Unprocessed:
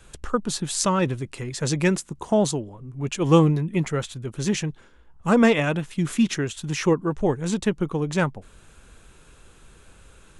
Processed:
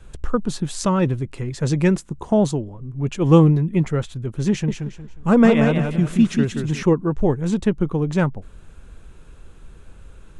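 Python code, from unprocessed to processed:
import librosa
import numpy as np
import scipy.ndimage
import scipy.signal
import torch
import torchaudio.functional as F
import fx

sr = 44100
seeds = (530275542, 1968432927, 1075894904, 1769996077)

y = fx.tilt_eq(x, sr, slope=-2.0)
y = fx.echo_warbled(y, sr, ms=180, feedback_pct=31, rate_hz=2.8, cents=77, wet_db=-5.5, at=(4.5, 6.83))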